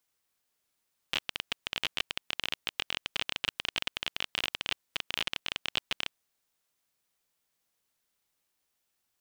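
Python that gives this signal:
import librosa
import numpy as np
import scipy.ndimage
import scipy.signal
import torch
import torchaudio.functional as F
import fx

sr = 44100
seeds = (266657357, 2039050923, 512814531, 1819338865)

y = fx.geiger_clicks(sr, seeds[0], length_s=5.23, per_s=23.0, level_db=-12.5)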